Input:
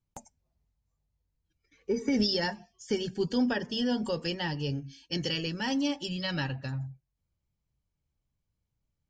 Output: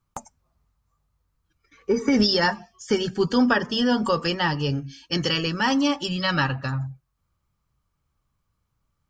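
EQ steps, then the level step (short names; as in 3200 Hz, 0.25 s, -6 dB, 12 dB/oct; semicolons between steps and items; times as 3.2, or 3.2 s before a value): bell 1200 Hz +14.5 dB 0.6 oct; +7.0 dB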